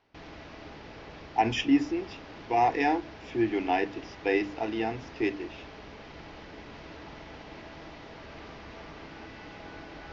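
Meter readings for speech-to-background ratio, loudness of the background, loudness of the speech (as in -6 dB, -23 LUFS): 16.5 dB, -45.5 LUFS, -29.0 LUFS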